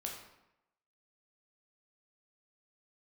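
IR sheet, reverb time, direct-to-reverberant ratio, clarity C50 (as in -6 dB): 0.85 s, -0.5 dB, 4.5 dB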